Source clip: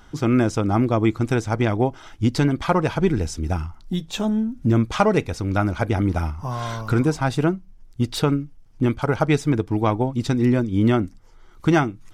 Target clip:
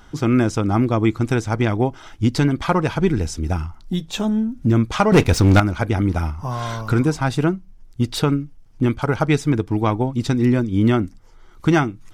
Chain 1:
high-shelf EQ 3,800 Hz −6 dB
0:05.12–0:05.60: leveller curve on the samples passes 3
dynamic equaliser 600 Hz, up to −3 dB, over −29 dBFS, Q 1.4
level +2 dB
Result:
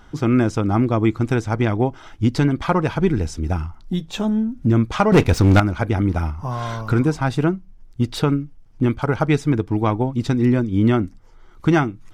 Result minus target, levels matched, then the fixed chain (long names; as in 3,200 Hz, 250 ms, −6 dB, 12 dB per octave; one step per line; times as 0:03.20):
8,000 Hz band −4.5 dB
0:05.12–0:05.60: leveller curve on the samples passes 3
dynamic equaliser 600 Hz, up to −3 dB, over −29 dBFS, Q 1.4
level +2 dB